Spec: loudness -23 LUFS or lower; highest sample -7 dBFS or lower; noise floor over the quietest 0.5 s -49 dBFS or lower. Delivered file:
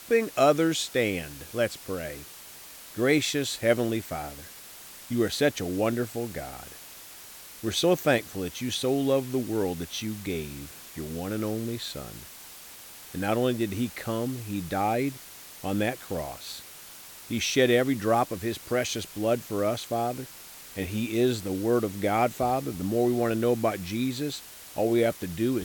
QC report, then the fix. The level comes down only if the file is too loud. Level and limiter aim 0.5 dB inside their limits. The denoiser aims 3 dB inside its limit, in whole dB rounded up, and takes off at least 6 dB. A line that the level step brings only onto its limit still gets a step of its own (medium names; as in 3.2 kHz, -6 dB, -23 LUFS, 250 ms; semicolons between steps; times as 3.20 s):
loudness -28.0 LUFS: pass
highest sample -9.0 dBFS: pass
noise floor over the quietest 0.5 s -46 dBFS: fail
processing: noise reduction 6 dB, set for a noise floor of -46 dBFS